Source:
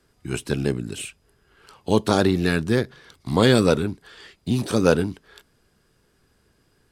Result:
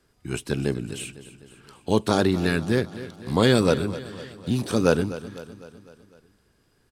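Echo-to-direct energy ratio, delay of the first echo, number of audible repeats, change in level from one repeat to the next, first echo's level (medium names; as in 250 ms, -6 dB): -13.5 dB, 252 ms, 4, -5.0 dB, -15.0 dB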